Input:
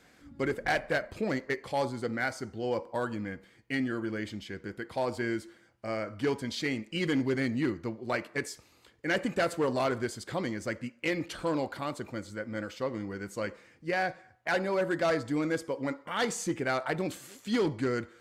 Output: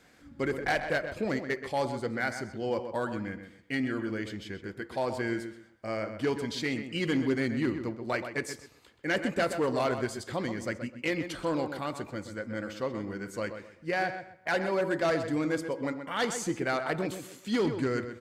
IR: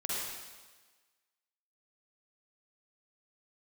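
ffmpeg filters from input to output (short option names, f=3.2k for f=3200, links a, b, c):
-filter_complex "[0:a]asplit=2[a][b];[b]adelay=128,lowpass=f=3.3k:p=1,volume=-9dB,asplit=2[c][d];[d]adelay=128,lowpass=f=3.3k:p=1,volume=0.27,asplit=2[e][f];[f]adelay=128,lowpass=f=3.3k:p=1,volume=0.27[g];[a][c][e][g]amix=inputs=4:normalize=0"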